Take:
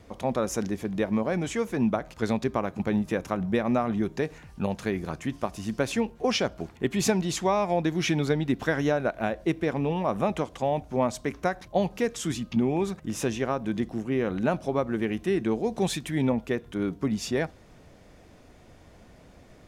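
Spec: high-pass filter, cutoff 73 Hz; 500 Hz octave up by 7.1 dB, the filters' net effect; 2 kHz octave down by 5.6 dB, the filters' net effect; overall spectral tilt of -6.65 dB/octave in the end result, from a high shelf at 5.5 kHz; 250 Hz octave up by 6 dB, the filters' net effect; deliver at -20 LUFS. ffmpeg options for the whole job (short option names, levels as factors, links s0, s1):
-af "highpass=73,equalizer=f=250:t=o:g=5.5,equalizer=f=500:t=o:g=7.5,equalizer=f=2000:t=o:g=-7.5,highshelf=f=5500:g=-4.5,volume=1.33"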